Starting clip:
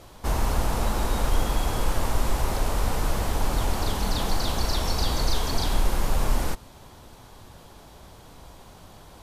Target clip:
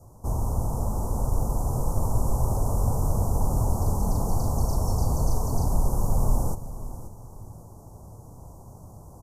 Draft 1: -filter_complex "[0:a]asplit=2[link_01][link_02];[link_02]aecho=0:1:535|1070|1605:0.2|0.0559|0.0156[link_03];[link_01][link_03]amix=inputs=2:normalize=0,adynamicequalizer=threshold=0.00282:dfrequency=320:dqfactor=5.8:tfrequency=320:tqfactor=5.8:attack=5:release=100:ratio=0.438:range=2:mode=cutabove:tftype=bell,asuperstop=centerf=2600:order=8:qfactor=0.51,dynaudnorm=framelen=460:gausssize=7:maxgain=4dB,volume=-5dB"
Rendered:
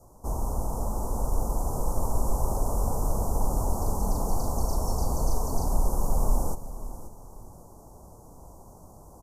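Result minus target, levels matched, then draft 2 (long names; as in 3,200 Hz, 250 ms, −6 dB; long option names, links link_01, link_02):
125 Hz band −3.0 dB
-filter_complex "[0:a]asplit=2[link_01][link_02];[link_02]aecho=0:1:535|1070|1605:0.2|0.0559|0.0156[link_03];[link_01][link_03]amix=inputs=2:normalize=0,adynamicequalizer=threshold=0.00282:dfrequency=320:dqfactor=5.8:tfrequency=320:tqfactor=5.8:attack=5:release=100:ratio=0.438:range=2:mode=cutabove:tftype=bell,asuperstop=centerf=2600:order=8:qfactor=0.51,equalizer=frequency=110:width_type=o:width=1.2:gain=10.5,dynaudnorm=framelen=460:gausssize=7:maxgain=4dB,volume=-5dB"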